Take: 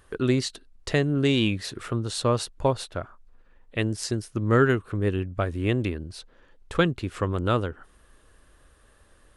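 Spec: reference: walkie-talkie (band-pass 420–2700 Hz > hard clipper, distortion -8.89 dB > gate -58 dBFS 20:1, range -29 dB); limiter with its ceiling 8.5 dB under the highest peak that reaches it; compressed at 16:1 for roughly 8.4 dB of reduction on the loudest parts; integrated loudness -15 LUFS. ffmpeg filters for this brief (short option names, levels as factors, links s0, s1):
-af "acompressor=threshold=0.0708:ratio=16,alimiter=limit=0.0944:level=0:latency=1,highpass=420,lowpass=2700,asoftclip=type=hard:threshold=0.0224,agate=range=0.0355:threshold=0.00126:ratio=20,volume=20"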